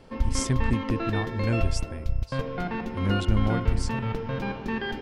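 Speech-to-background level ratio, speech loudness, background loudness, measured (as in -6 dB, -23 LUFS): 0.5 dB, -30.0 LUFS, -30.5 LUFS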